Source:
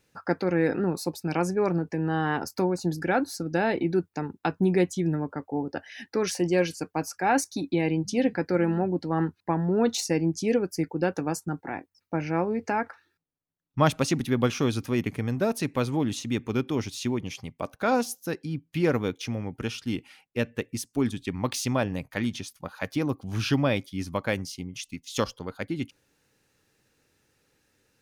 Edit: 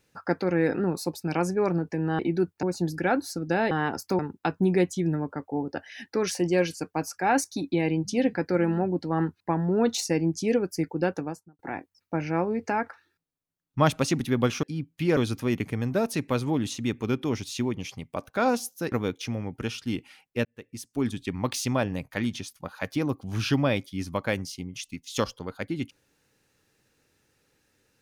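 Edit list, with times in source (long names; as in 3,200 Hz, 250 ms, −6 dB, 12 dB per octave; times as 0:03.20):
0:02.19–0:02.67: swap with 0:03.75–0:04.19
0:11.05–0:11.59: fade out and dull
0:18.38–0:18.92: move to 0:14.63
0:20.45–0:21.14: fade in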